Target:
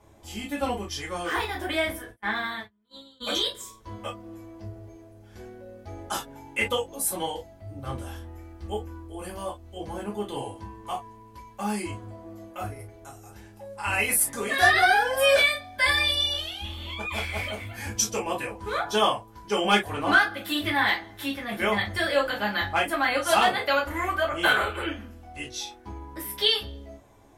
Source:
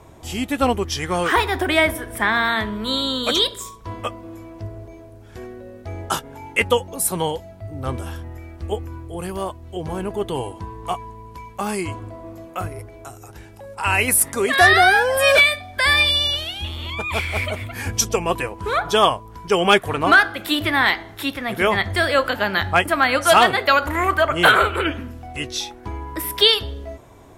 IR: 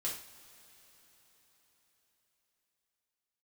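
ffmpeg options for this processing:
-filter_complex "[0:a]asplit=3[s0][s1][s2];[s0]afade=t=out:st=2.09:d=0.02[s3];[s1]agate=range=0.01:threshold=0.126:ratio=16:detection=peak,afade=t=in:st=2.09:d=0.02,afade=t=out:st=3.2:d=0.02[s4];[s2]afade=t=in:st=3.2:d=0.02[s5];[s3][s4][s5]amix=inputs=3:normalize=0,dynaudnorm=f=240:g=31:m=3.76[s6];[1:a]atrim=start_sample=2205,atrim=end_sample=4410,asetrate=70560,aresample=44100[s7];[s6][s7]afir=irnorm=-1:irlink=0,volume=0.531"

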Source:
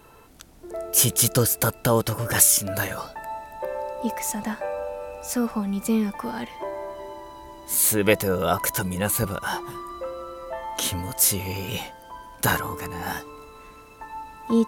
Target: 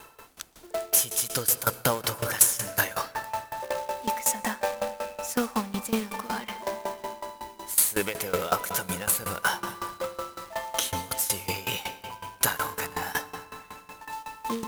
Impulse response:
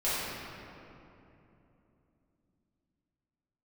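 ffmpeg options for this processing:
-filter_complex "[0:a]lowshelf=f=450:g=-12,acompressor=threshold=0.0447:ratio=2.5,acrusher=bits=2:mode=log:mix=0:aa=0.000001,asplit=2[s0][s1];[1:a]atrim=start_sample=2205,adelay=116[s2];[s1][s2]afir=irnorm=-1:irlink=0,volume=0.0841[s3];[s0][s3]amix=inputs=2:normalize=0,aeval=exprs='val(0)*pow(10,-19*if(lt(mod(5.4*n/s,1),2*abs(5.4)/1000),1-mod(5.4*n/s,1)/(2*abs(5.4)/1000),(mod(5.4*n/s,1)-2*abs(5.4)/1000)/(1-2*abs(5.4)/1000))/20)':c=same,volume=2.82"

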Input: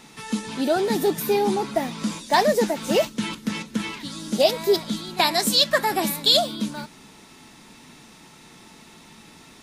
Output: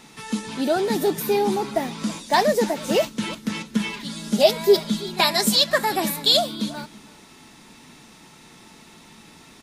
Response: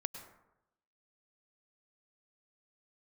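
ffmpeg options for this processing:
-filter_complex "[0:a]asettb=1/sr,asplit=3[s0][s1][s2];[s0]atrim=end=3.744[s3];[s1]atrim=start=3.74:end=5.56,asetpts=PTS-STARTPTS,afade=t=in:d=0.004:c=qsin,afade=t=out:st=1.816:d=0.004:c=qsin,aecho=1:1:4.9:0.65,atrim=end_sample=80262[s4];[s2]atrim=start=5.556[s5];[s3][s4]acrossfade=d=0.004:c1=hsin:c2=qsin[s6];[s6][s5]acrossfade=d=0.004:c1=qsin:c2=hsin,asplit=2[s7][s8];[s8]aecho=0:1:328:0.0944[s9];[s7][s9]amix=inputs=2:normalize=0"

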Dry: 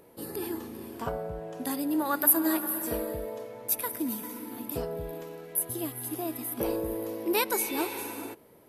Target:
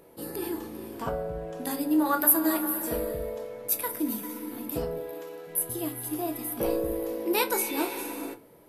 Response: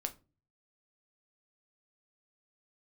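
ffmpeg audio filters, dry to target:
-filter_complex "[0:a]asettb=1/sr,asplit=3[s0][s1][s2];[s0]atrim=end=4.984[s3];[s1]atrim=start=4.98:end=5.47,asetpts=PTS-STARTPTS,afade=t=in:d=0.004:c=qsin,afade=t=out:st=0.486:d=0.004:c=qsin,highpass=350[s4];[s2]atrim=start=5.466[s5];[s3][s4]acrossfade=d=0.004:c1=hsin:c2=qsin[s6];[s6][s5]acrossfade=d=0.004:c1=qsin:c2=hsin[s7];[1:a]atrim=start_sample=2205[s8];[s7][s8]afir=irnorm=-1:irlink=0,volume=1.19"

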